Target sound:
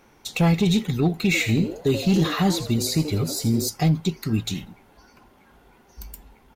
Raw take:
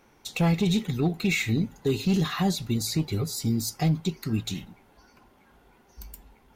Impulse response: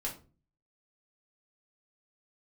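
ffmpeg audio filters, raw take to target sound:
-filter_complex "[0:a]asplit=3[a][b][c];[a]afade=t=out:st=1.33:d=0.02[d];[b]asplit=5[e][f][g][h][i];[f]adelay=82,afreqshift=140,volume=-11dB[j];[g]adelay=164,afreqshift=280,volume=-20.1dB[k];[h]adelay=246,afreqshift=420,volume=-29.2dB[l];[i]adelay=328,afreqshift=560,volume=-38.4dB[m];[e][j][k][l][m]amix=inputs=5:normalize=0,afade=t=in:st=1.33:d=0.02,afade=t=out:st=3.67:d=0.02[n];[c]afade=t=in:st=3.67:d=0.02[o];[d][n][o]amix=inputs=3:normalize=0,volume=4dB"

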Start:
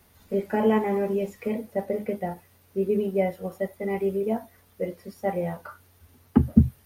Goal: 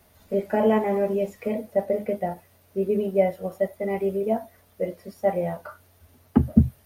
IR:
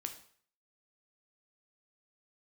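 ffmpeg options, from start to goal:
-af "equalizer=f=630:w=4.5:g=8.5"

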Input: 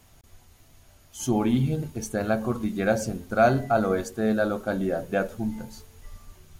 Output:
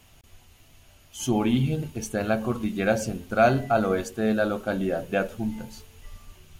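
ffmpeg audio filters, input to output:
-af "equalizer=f=2.8k:w=2.5:g=8"

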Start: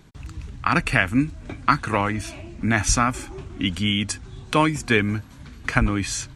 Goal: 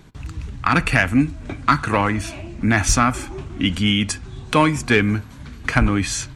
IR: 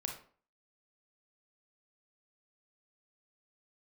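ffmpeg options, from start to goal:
-filter_complex "[0:a]acontrast=68,asplit=2[a][b];[b]lowpass=4.4k[c];[1:a]atrim=start_sample=2205[d];[c][d]afir=irnorm=-1:irlink=0,volume=-13.5dB[e];[a][e]amix=inputs=2:normalize=0,volume=-3.5dB"

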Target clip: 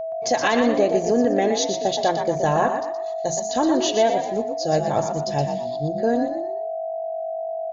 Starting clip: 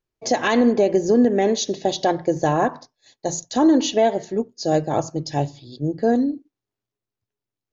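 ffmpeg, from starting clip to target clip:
-filter_complex "[0:a]aeval=exprs='val(0)+0.0562*sin(2*PI*650*n/s)':c=same,equalizer=f=300:w=1.4:g=-6.5,asplit=5[a][b][c][d][e];[b]adelay=120,afreqshift=49,volume=-7dB[f];[c]adelay=240,afreqshift=98,volume=-16.1dB[g];[d]adelay=360,afreqshift=147,volume=-25.2dB[h];[e]adelay=480,afreqshift=196,volume=-34.4dB[i];[a][f][g][h][i]amix=inputs=5:normalize=0"

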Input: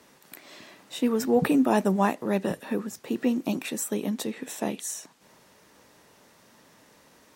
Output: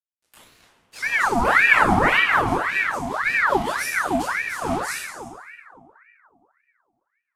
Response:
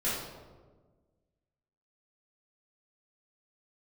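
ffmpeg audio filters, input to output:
-filter_complex "[0:a]acrusher=bits=5:mix=0:aa=0.5[a];[1:a]atrim=start_sample=2205,asetrate=25137,aresample=44100[b];[a][b]afir=irnorm=-1:irlink=0,aeval=exprs='val(0)*sin(2*PI*1300*n/s+1300*0.65/1.8*sin(2*PI*1.8*n/s))':c=same,volume=-6dB"

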